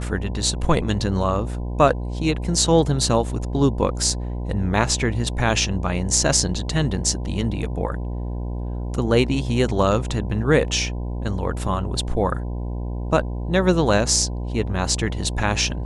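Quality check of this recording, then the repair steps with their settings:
mains buzz 60 Hz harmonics 17 −27 dBFS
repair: hum removal 60 Hz, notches 17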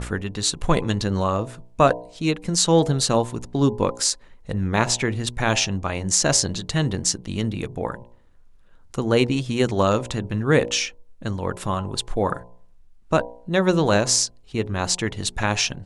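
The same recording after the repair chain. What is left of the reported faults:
none of them is left

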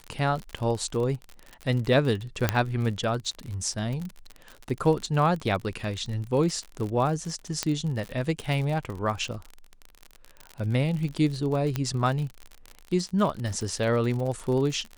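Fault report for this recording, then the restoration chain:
surface crackle 52 per second −31 dBFS
0:02.49: click −7 dBFS
0:07.63: click −10 dBFS
0:11.76: click −13 dBFS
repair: click removal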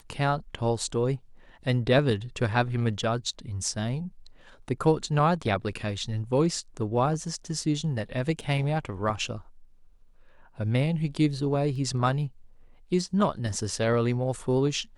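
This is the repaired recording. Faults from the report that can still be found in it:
0:11.76: click

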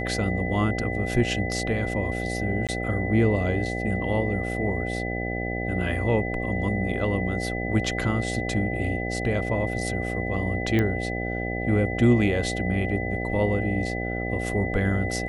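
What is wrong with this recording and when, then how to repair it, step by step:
mains buzz 60 Hz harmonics 13 −30 dBFS
whistle 2,000 Hz −32 dBFS
0:02.67–0:02.69: drop-out 17 ms
0:10.79: click −12 dBFS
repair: click removal
notch filter 2,000 Hz, Q 30
hum removal 60 Hz, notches 13
repair the gap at 0:02.67, 17 ms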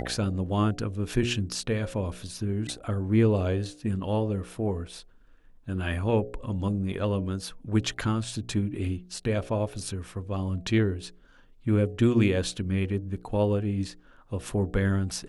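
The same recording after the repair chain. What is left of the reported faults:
0:10.79: click

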